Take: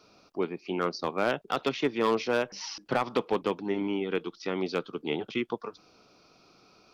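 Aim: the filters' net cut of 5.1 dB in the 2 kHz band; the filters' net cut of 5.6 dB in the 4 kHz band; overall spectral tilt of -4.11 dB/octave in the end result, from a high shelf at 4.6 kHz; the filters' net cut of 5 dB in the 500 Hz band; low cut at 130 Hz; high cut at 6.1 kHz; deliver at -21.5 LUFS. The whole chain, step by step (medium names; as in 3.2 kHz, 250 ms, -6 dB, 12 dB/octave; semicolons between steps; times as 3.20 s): high-pass 130 Hz; low-pass 6.1 kHz; peaking EQ 500 Hz -6 dB; peaking EQ 2 kHz -6 dB; peaking EQ 4 kHz -8.5 dB; treble shelf 4.6 kHz +7.5 dB; trim +13 dB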